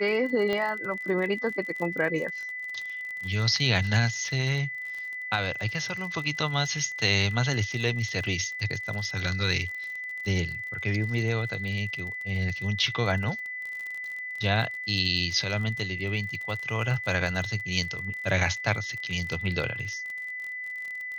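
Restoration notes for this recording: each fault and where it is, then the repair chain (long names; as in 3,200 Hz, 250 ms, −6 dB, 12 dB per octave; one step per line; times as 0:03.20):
surface crackle 41 per second −34 dBFS
whistle 2,000 Hz −33 dBFS
0:00.53: click −17 dBFS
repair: click removal
notch filter 2,000 Hz, Q 30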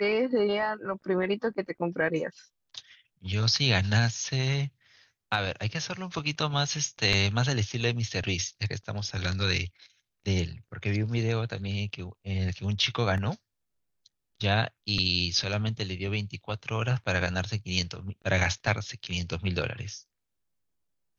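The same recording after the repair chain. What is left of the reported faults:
none of them is left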